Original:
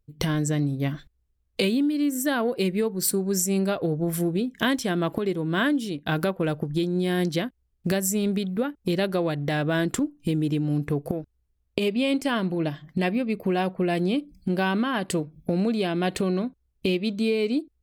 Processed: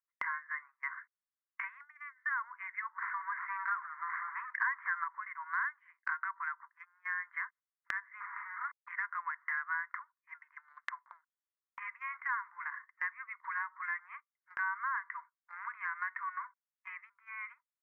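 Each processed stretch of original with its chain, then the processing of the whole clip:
2.98–5.04 s: companding laws mixed up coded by mu + overdrive pedal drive 19 dB, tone 1.7 kHz, clips at -8.5 dBFS
8.20–8.88 s: send-on-delta sampling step -32.5 dBFS + treble shelf 2.5 kHz -12 dB
whole clip: Chebyshev band-pass 970–2100 Hz, order 5; gate -56 dBFS, range -14 dB; compression 3:1, threshold -45 dBFS; trim +8.5 dB

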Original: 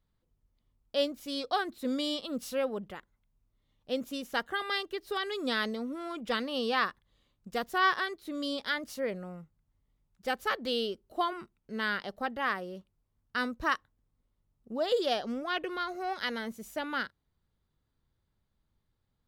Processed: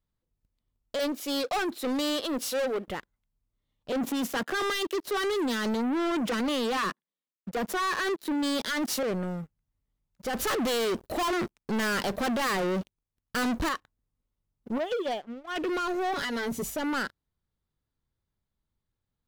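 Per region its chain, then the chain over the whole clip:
0.99–2.88 s: high-pass 300 Hz 24 dB/octave + hard clipper -27.5 dBFS
3.92–9.03 s: steep high-pass 160 Hz 72 dB/octave + waveshaping leveller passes 3 + three bands expanded up and down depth 100%
10.33–13.69 s: hard clipper -30.5 dBFS + waveshaping leveller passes 3
14.78–15.56 s: brick-wall FIR low-pass 3.6 kHz + peaking EQ 790 Hz +2.5 dB 0.3 oct + upward expansion 2.5:1, over -39 dBFS
16.13–16.70 s: peaking EQ 93 Hz +8 dB 2.4 oct + comb 7.1 ms, depth 96% + compression 10:1, threshold -35 dBFS
whole clip: dynamic bell 290 Hz, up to +5 dB, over -44 dBFS, Q 1; peak limiter -25 dBFS; waveshaping leveller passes 3

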